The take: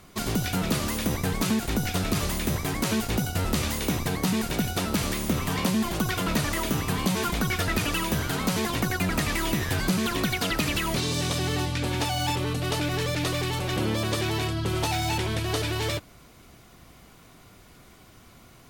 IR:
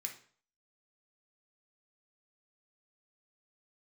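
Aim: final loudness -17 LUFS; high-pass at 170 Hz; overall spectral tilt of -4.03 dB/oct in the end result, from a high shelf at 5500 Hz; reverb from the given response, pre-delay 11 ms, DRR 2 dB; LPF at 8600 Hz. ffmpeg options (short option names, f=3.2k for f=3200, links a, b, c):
-filter_complex "[0:a]highpass=170,lowpass=8.6k,highshelf=f=5.5k:g=-3,asplit=2[a][b];[1:a]atrim=start_sample=2205,adelay=11[c];[b][c]afir=irnorm=-1:irlink=0,volume=0dB[d];[a][d]amix=inputs=2:normalize=0,volume=9.5dB"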